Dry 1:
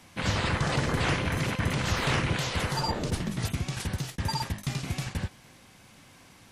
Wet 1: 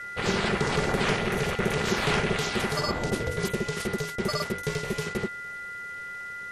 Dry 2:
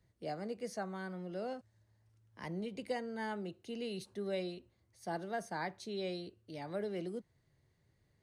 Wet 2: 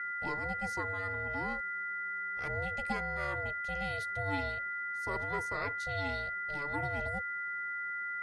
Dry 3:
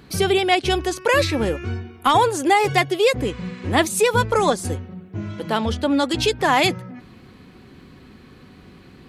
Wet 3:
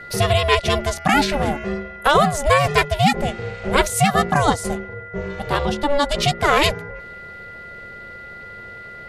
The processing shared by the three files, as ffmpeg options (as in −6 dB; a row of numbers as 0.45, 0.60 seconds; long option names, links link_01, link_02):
-af "aeval=exprs='val(0)+0.0158*sin(2*PI*1700*n/s)':channel_layout=same,aeval=exprs='val(0)*sin(2*PI*290*n/s)':channel_layout=same,volume=4dB"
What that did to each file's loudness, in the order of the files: +1.5, +6.5, +1.0 LU